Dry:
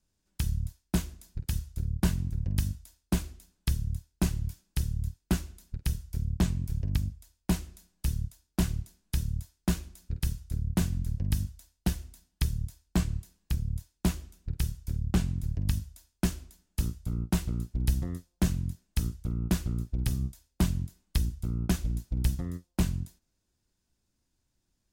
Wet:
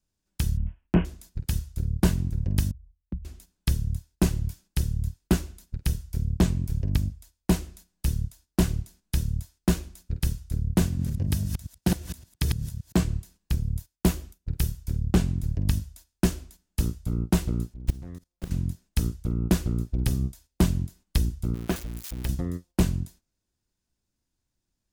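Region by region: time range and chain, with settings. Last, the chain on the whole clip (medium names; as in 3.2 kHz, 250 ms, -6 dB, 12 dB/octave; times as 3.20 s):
0.57–1.05 s: steep low-pass 3 kHz 96 dB/octave + doubling 23 ms -3.5 dB
2.71–3.25 s: resonances exaggerated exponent 3 + compression 1.5:1, threshold -48 dBFS + brick-wall FIR low-pass 1 kHz
10.87–13.04 s: chunks repeated in reverse 114 ms, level -3 dB + high-pass 66 Hz
13.63–14.84 s: gate -53 dBFS, range -12 dB + peaking EQ 14 kHz +5.5 dB 0.63 oct
17.74–18.51 s: self-modulated delay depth 0.57 ms + level held to a coarse grid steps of 21 dB
21.54–22.29 s: zero-crossing glitches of -26 dBFS + tone controls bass -9 dB, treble -10 dB
whole clip: gate -53 dBFS, range -7 dB; dynamic bell 430 Hz, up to +6 dB, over -43 dBFS, Q 0.89; trim +3.5 dB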